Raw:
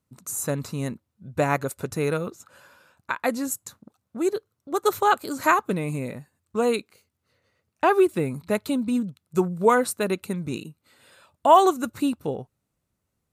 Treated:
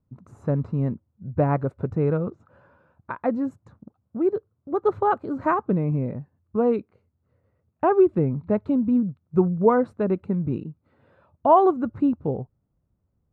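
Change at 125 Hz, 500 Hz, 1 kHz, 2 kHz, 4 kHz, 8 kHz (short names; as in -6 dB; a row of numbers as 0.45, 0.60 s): +6.0 dB, +1.0 dB, -2.0 dB, -9.0 dB, under -20 dB, under -35 dB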